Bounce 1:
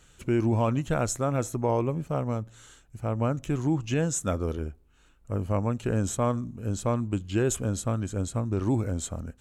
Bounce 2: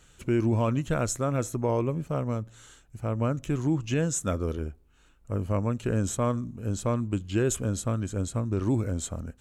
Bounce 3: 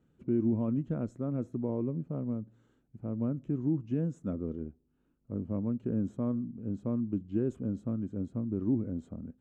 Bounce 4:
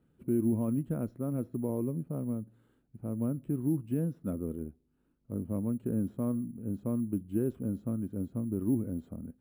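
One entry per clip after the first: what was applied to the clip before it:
dynamic EQ 790 Hz, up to -6 dB, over -47 dBFS, Q 3.7
band-pass 230 Hz, Q 1.7
careless resampling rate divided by 4×, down filtered, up hold

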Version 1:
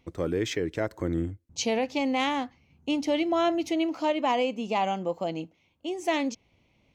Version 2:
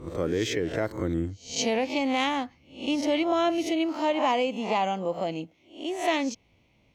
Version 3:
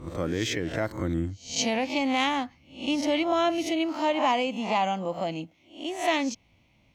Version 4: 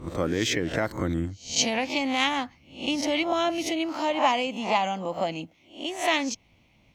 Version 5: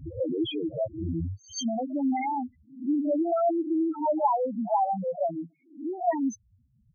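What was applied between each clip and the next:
spectral swells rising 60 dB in 0.41 s
bell 430 Hz -8 dB 0.53 oct; gain +1.5 dB
harmonic-percussive split percussive +7 dB; gain -1.5 dB
loudest bins only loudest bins 2; gain +4.5 dB

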